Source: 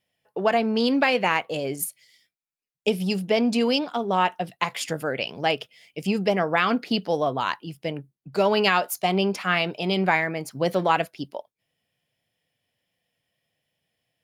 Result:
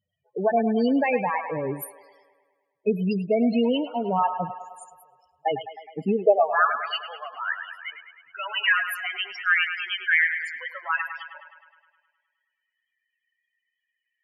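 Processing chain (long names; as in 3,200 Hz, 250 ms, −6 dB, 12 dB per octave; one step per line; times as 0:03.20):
high-pass filter sweep 76 Hz → 1,700 Hz, 0:05.66–0:06.71
0:04.54–0:05.46: inverse Chebyshev band-stop filter 100–4,200 Hz, stop band 40 dB
spectral peaks only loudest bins 8
on a send: delay with a band-pass on its return 104 ms, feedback 63%, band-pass 1,300 Hz, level −8.5 dB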